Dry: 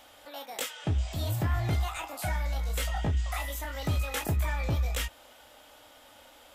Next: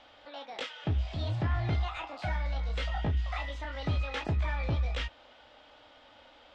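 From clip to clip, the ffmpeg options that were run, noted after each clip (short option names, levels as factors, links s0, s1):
-af "lowpass=f=4500:w=0.5412,lowpass=f=4500:w=1.3066,volume=0.841"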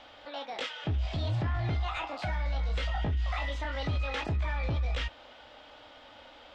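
-af "alimiter=level_in=1.78:limit=0.0631:level=0:latency=1:release=16,volume=0.562,volume=1.68"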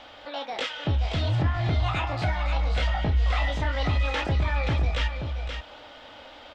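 -af "aecho=1:1:527:0.473,volume=1.88"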